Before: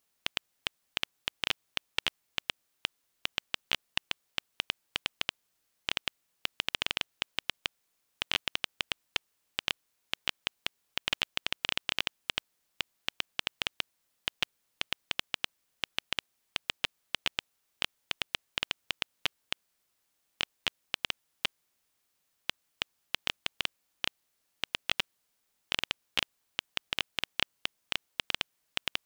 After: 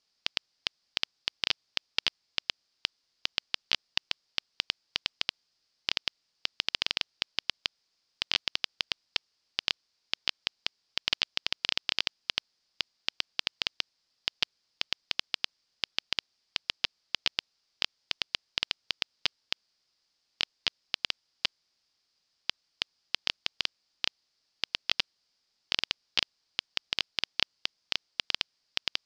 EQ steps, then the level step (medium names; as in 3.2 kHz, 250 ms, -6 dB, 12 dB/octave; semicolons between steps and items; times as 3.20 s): resonant low-pass 4.9 kHz, resonance Q 5.6; -2.5 dB